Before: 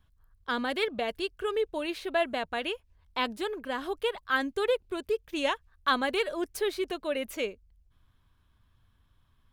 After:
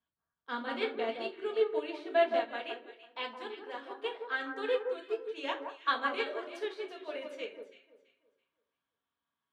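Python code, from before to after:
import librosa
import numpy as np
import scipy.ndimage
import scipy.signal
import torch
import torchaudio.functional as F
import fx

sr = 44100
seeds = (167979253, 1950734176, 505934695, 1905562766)

y = fx.bandpass_edges(x, sr, low_hz=fx.steps((0.0, 260.0), (2.38, 440.0)), high_hz=4900.0)
y = fx.echo_alternate(y, sr, ms=166, hz=1500.0, feedback_pct=52, wet_db=-3.5)
y = fx.room_shoebox(y, sr, seeds[0], volume_m3=270.0, walls='furnished', distance_m=1.7)
y = fx.upward_expand(y, sr, threshold_db=-40.0, expansion=1.5)
y = y * 10.0 ** (-4.5 / 20.0)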